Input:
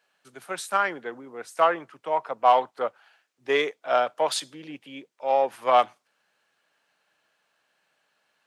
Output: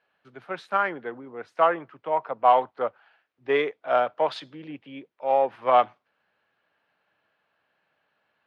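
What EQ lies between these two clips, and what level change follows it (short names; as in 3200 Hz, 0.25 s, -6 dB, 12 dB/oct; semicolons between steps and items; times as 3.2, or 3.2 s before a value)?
air absorption 320 m; bell 81 Hz +8.5 dB 1 oct; +1.5 dB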